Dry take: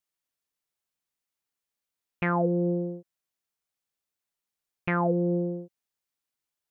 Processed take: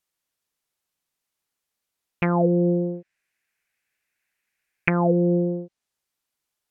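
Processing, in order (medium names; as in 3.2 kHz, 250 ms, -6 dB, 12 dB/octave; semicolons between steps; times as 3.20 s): 2.94–4.90 s: high-order bell 2 kHz +13 dB 1 oct; low-pass that closes with the level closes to 810 Hz, closed at -23.5 dBFS; trim +6 dB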